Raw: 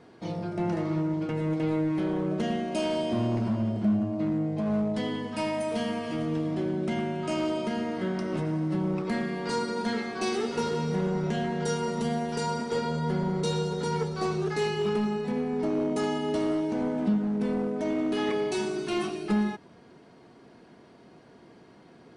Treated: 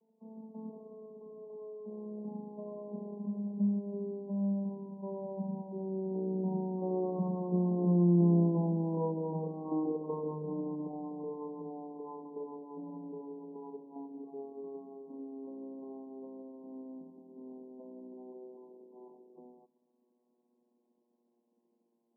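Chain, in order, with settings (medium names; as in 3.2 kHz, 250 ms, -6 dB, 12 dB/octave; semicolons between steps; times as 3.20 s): vocoder on a note that slides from G#3, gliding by -9 st; Doppler pass-by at 8.59 s, 23 m/s, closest 27 m; FFT band-pass 160–1100 Hz; trim +2.5 dB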